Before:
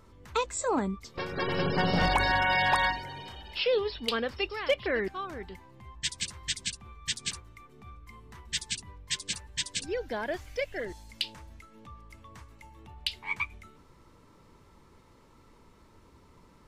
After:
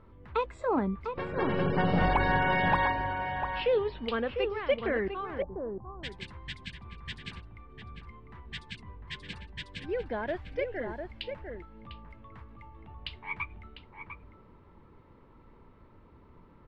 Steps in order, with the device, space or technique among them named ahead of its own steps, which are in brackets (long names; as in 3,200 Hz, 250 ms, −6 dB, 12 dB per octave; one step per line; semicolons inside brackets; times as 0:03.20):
shout across a valley (high-frequency loss of the air 470 metres; slap from a distant wall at 120 metres, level −6 dB)
0:05.42–0:06.03: Butterworth low-pass 1,100 Hz 36 dB per octave
level +1.5 dB